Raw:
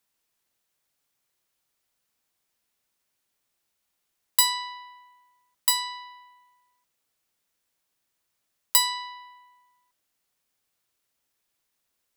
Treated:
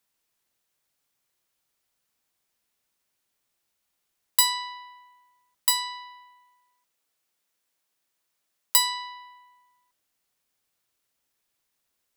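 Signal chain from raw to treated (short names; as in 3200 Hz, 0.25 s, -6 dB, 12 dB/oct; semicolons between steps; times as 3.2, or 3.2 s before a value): 6.24–8.98 low shelf 120 Hz -11.5 dB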